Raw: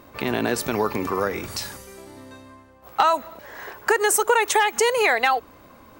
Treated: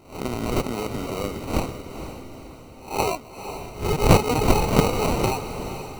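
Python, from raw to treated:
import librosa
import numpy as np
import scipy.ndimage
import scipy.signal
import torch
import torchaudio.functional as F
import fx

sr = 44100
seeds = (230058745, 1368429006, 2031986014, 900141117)

p1 = fx.spec_swells(x, sr, rise_s=0.39)
p2 = fx.band_shelf(p1, sr, hz=6100.0, db=12.0, octaves=1.7)
p3 = fx.sample_hold(p2, sr, seeds[0], rate_hz=1700.0, jitter_pct=0)
p4 = fx.low_shelf(p3, sr, hz=250.0, db=7.5)
p5 = p4 + fx.echo_diffused(p4, sr, ms=477, feedback_pct=48, wet_db=-10, dry=0)
y = p5 * librosa.db_to_amplitude(-8.5)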